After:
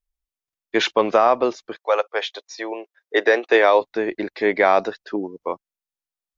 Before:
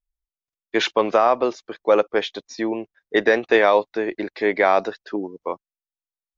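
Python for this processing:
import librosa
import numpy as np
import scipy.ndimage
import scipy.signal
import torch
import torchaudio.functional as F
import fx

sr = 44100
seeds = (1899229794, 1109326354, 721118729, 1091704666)

y = fx.highpass(x, sr, hz=fx.line((1.76, 610.0), (3.8, 280.0)), slope=24, at=(1.76, 3.8), fade=0.02)
y = y * librosa.db_to_amplitude(1.0)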